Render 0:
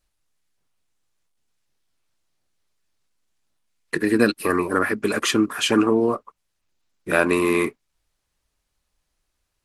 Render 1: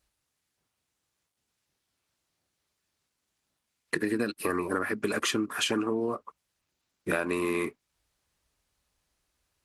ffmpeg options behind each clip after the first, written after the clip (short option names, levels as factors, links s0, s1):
-af "highpass=47,acompressor=threshold=0.0562:ratio=8"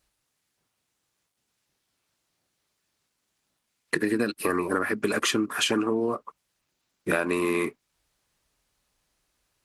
-af "equalizer=f=70:t=o:w=0.46:g=-10.5,volume=1.5"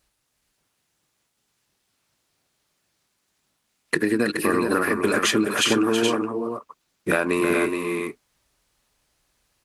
-af "aecho=1:1:324|423:0.335|0.501,volume=1.5"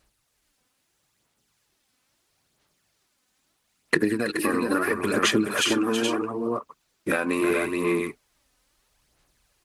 -af "acompressor=threshold=0.0447:ratio=1.5,aphaser=in_gain=1:out_gain=1:delay=4:decay=0.44:speed=0.76:type=sinusoidal"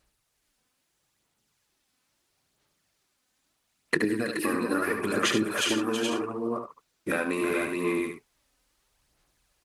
-af "aecho=1:1:73:0.447,volume=0.631"